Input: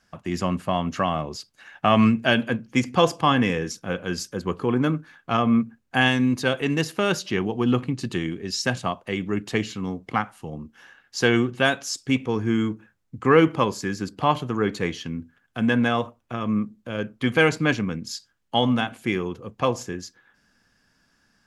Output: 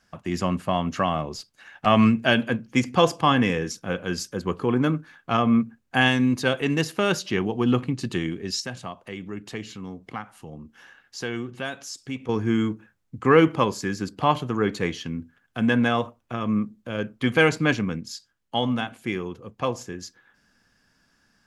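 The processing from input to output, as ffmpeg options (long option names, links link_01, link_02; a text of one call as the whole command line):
ffmpeg -i in.wav -filter_complex "[0:a]asplit=3[link_01][link_02][link_03];[link_01]afade=type=out:start_time=1.36:duration=0.02[link_04];[link_02]aeval=exprs='(tanh(15.8*val(0)+0.3)-tanh(0.3))/15.8':channel_layout=same,afade=type=in:start_time=1.36:duration=0.02,afade=type=out:start_time=1.85:duration=0.02[link_05];[link_03]afade=type=in:start_time=1.85:duration=0.02[link_06];[link_04][link_05][link_06]amix=inputs=3:normalize=0,asettb=1/sr,asplit=3[link_07][link_08][link_09];[link_07]atrim=end=8.604[link_10];[link_08]atrim=start=8.6:end=12.29,asetpts=PTS-STARTPTS,afade=type=in:duration=0.004:curve=qsin,afade=type=out:start_time=3.686:duration=0.004:curve=qsin,acompressor=threshold=-45dB:ratio=1.5:attack=3.2:release=140:knee=1:detection=peak[link_11];[link_09]atrim=start=12.286[link_12];[link_10][link_11]acrossfade=duration=0.004:curve1=hsin:curve2=qsin[link_13];[link_13][link_12]acrossfade=duration=0.004:curve1=qsin:curve2=hsin,asplit=3[link_14][link_15][link_16];[link_14]atrim=end=18.012[link_17];[link_15]atrim=start=18.008:end=20.012,asetpts=PTS-STARTPTS,volume=-3.5dB[link_18];[link_16]atrim=start=20.008[link_19];[link_17][link_18]acrossfade=duration=0.004:curve1=hsin:curve2=hsin[link_20];[link_20][link_19]acrossfade=duration=0.004:curve1=hsin:curve2=hsin" out.wav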